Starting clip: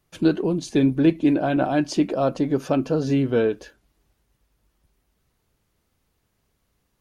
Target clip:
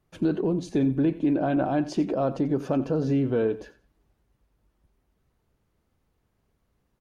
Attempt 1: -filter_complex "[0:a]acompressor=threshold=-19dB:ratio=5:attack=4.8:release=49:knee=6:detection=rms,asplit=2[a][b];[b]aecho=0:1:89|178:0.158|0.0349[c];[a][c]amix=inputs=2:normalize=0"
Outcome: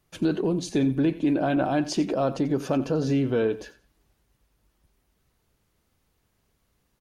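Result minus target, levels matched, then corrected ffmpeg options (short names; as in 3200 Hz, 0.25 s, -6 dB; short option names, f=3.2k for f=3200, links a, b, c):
4000 Hz band +8.0 dB
-filter_complex "[0:a]acompressor=threshold=-19dB:ratio=5:attack=4.8:release=49:knee=6:detection=rms,highshelf=f=2.1k:g=-10.5,asplit=2[a][b];[b]aecho=0:1:89|178:0.158|0.0349[c];[a][c]amix=inputs=2:normalize=0"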